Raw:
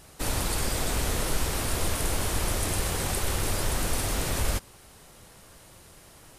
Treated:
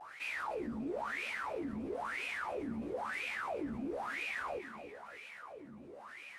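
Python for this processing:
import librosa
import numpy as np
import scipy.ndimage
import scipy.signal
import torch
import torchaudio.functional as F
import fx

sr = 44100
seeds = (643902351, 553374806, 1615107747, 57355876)

p1 = fx.vibrato(x, sr, rate_hz=0.8, depth_cents=55.0)
p2 = fx.wah_lfo(p1, sr, hz=1.0, low_hz=220.0, high_hz=2500.0, q=15.0)
p3 = fx.doubler(p2, sr, ms=14.0, db=-4.0)
p4 = p3 + fx.echo_feedback(p3, sr, ms=292, feedback_pct=32, wet_db=-18.5, dry=0)
p5 = fx.env_flatten(p4, sr, amount_pct=50)
y = F.gain(torch.from_numpy(p5), 5.0).numpy()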